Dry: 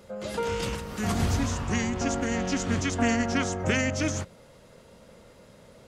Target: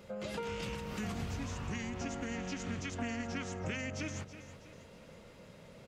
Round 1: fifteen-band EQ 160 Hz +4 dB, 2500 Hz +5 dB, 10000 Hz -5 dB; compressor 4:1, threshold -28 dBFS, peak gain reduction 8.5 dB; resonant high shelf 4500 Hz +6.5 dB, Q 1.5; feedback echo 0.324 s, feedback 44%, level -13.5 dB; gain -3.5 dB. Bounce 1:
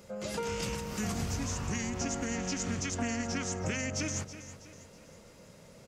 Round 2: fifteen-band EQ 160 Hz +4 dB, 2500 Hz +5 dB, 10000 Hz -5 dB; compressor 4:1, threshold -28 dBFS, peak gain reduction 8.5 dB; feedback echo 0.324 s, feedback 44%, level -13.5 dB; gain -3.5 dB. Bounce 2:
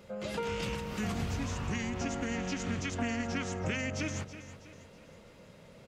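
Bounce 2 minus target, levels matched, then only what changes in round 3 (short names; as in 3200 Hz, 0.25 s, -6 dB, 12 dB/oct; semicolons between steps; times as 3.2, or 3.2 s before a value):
compressor: peak gain reduction -4.5 dB
change: compressor 4:1, threshold -34 dBFS, peak gain reduction 13 dB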